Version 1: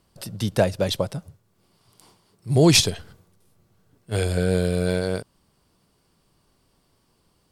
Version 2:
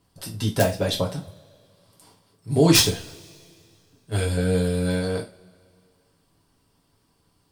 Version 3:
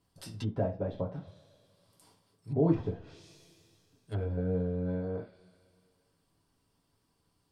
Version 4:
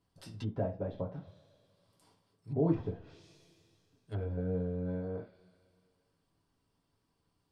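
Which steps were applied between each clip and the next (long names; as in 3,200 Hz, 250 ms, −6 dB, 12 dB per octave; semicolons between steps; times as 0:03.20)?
harmonic and percussive parts rebalanced percussive +4 dB; wrap-around overflow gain 2 dB; coupled-rooms reverb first 0.27 s, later 2.4 s, from −28 dB, DRR −2 dB; level −7 dB
de-essing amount 45%; treble cut that deepens with the level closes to 860 Hz, closed at −21.5 dBFS; level −9 dB
high-shelf EQ 7,100 Hz −9 dB; level −3 dB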